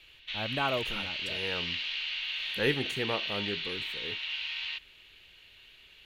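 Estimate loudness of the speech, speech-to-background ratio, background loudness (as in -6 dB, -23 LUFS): -35.5 LUFS, -2.5 dB, -33.0 LUFS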